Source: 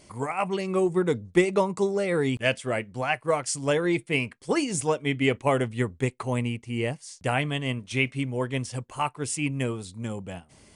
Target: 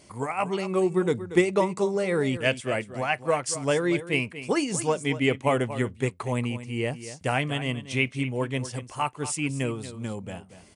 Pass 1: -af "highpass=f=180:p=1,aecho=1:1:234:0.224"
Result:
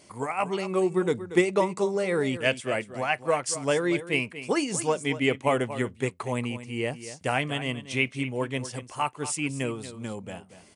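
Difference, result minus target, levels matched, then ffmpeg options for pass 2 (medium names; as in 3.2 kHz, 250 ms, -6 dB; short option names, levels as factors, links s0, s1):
125 Hz band -3.0 dB
-af "highpass=f=54:p=1,aecho=1:1:234:0.224"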